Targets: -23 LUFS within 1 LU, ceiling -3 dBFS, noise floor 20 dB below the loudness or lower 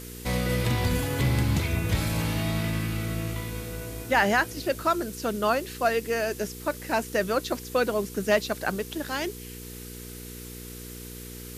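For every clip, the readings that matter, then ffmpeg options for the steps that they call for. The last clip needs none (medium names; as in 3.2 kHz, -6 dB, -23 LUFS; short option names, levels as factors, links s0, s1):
hum 60 Hz; highest harmonic 480 Hz; hum level -39 dBFS; noise floor -41 dBFS; noise floor target -47 dBFS; loudness -27.0 LUFS; peak level -9.5 dBFS; loudness target -23.0 LUFS
-> -af "bandreject=f=60:t=h:w=4,bandreject=f=120:t=h:w=4,bandreject=f=180:t=h:w=4,bandreject=f=240:t=h:w=4,bandreject=f=300:t=h:w=4,bandreject=f=360:t=h:w=4,bandreject=f=420:t=h:w=4,bandreject=f=480:t=h:w=4"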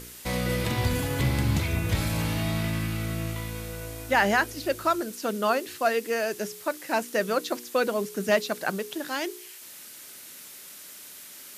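hum not found; noise floor -45 dBFS; noise floor target -48 dBFS
-> -af "afftdn=nr=6:nf=-45"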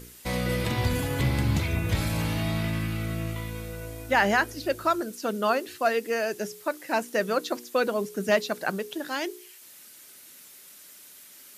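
noise floor -50 dBFS; loudness -27.5 LUFS; peak level -9.5 dBFS; loudness target -23.0 LUFS
-> -af "volume=1.68"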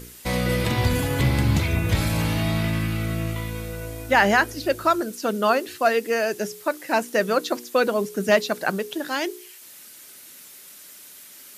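loudness -23.0 LUFS; peak level -5.0 dBFS; noise floor -45 dBFS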